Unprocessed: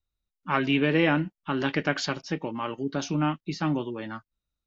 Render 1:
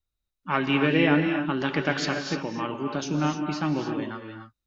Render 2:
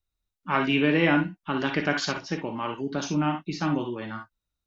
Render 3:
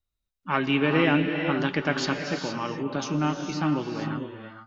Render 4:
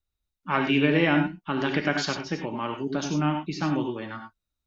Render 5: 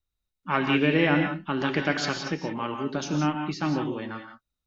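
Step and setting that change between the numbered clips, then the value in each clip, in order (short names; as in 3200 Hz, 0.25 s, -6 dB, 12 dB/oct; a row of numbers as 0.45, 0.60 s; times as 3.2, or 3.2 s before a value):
non-linear reverb, gate: 320, 80, 490, 120, 200 ms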